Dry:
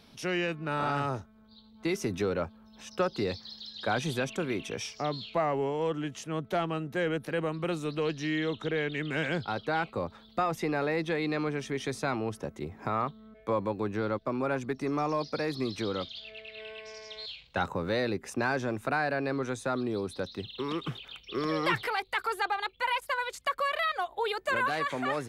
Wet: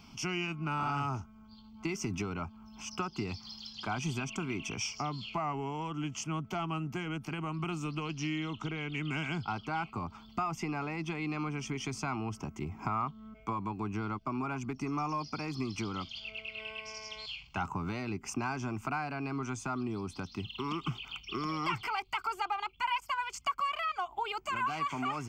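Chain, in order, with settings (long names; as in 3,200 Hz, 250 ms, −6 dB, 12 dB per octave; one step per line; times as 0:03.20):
downward compressor 2.5 to 1, threshold −35 dBFS, peak gain reduction 8.5 dB
phaser with its sweep stopped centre 2,600 Hz, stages 8
level +5.5 dB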